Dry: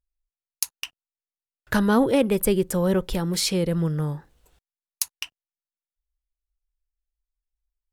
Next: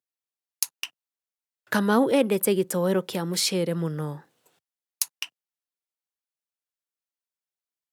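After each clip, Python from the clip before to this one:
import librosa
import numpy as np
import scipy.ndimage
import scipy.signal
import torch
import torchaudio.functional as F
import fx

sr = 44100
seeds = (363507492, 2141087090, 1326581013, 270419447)

y = scipy.signal.sosfilt(scipy.signal.bessel(8, 210.0, 'highpass', norm='mag', fs=sr, output='sos'), x)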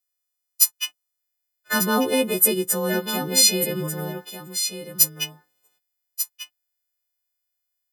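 y = fx.freq_snap(x, sr, grid_st=3)
y = y + 10.0 ** (-9.5 / 20.0) * np.pad(y, (int(1192 * sr / 1000.0), 0))[:len(y)]
y = y * 10.0 ** (-1.0 / 20.0)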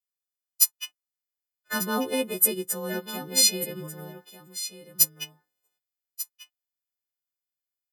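y = fx.upward_expand(x, sr, threshold_db=-30.0, expansion=1.5)
y = y * 10.0 ** (-2.5 / 20.0)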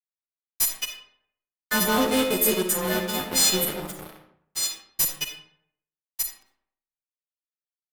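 y = fx.fuzz(x, sr, gain_db=29.0, gate_db=-36.0)
y = fx.rev_freeverb(y, sr, rt60_s=0.67, hf_ratio=0.65, predelay_ms=15, drr_db=4.5)
y = y * 10.0 ** (-4.5 / 20.0)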